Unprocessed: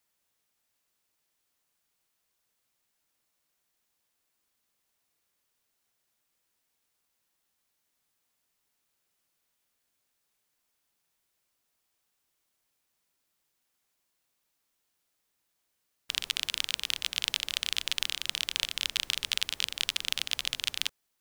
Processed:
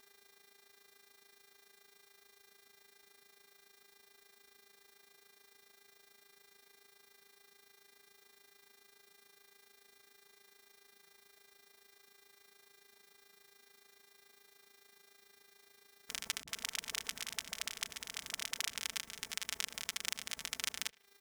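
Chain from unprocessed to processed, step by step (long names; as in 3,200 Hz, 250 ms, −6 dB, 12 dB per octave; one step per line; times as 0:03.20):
high-pass filter 61 Hz
flat-topped bell 3,400 Hz −9 dB 1 octave
hum with harmonics 400 Hz, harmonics 14, −78 dBFS −1 dB per octave
downward compressor 16 to 1, threshold −44 dBFS, peak gain reduction 18 dB
feedback echo with a low-pass in the loop 77 ms, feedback 53%, low-pass 3,800 Hz, level −23 dB
amplitude modulation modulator 27 Hz, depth 60%
comb filter 4.5 ms, depth 59%
0:16.43–0:18.76: all-pass dispersion highs, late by 46 ms, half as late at 360 Hz
level +13 dB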